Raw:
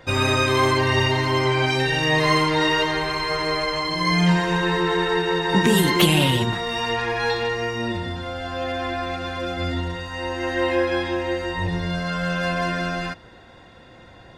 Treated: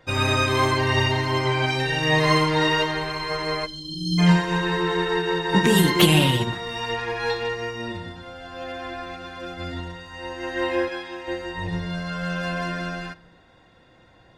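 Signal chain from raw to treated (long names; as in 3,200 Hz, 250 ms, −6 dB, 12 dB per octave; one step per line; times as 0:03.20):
0:03.66–0:04.19: time-frequency box erased 360–3,100 Hz
0:10.88–0:11.28: low-shelf EQ 460 Hz −9 dB
rectangular room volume 2,000 cubic metres, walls furnished, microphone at 0.53 metres
expander for the loud parts 1.5 to 1, over −31 dBFS
level +1 dB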